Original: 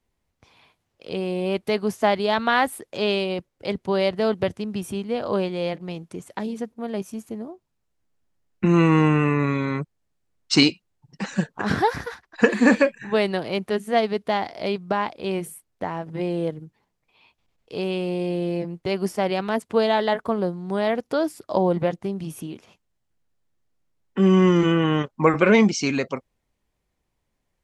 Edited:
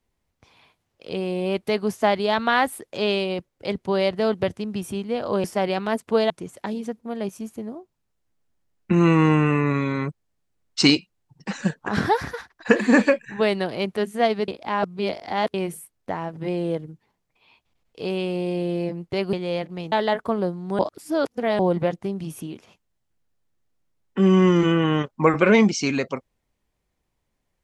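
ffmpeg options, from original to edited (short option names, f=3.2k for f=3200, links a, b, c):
-filter_complex "[0:a]asplit=9[a][b][c][d][e][f][g][h][i];[a]atrim=end=5.442[j];[b]atrim=start=19.058:end=19.922[k];[c]atrim=start=6.028:end=14.212[l];[d]atrim=start=14.208:end=15.272,asetpts=PTS-STARTPTS,areverse[m];[e]atrim=start=15.268:end=19.062[n];[f]atrim=start=5.438:end=6.032[o];[g]atrim=start=19.918:end=20.792[p];[h]atrim=start=20.788:end=21.592,asetpts=PTS-STARTPTS,areverse[q];[i]atrim=start=21.588[r];[j][k]acrossfade=d=0.004:c1=hsin:c2=hsin[s];[s][l]acrossfade=d=0.004:c1=hsin:c2=hsin[t];[t][m]acrossfade=d=0.004:c1=hsin:c2=hsin[u];[u][n]acrossfade=d=0.004:c1=hsin:c2=hsin[v];[v][o]acrossfade=d=0.004:c1=hsin:c2=hsin[w];[w][p]acrossfade=d=0.004:c1=hsin:c2=hsin[x];[x][q]acrossfade=d=0.004:c1=hsin:c2=hsin[y];[y][r]acrossfade=d=0.004:c1=hsin:c2=hsin"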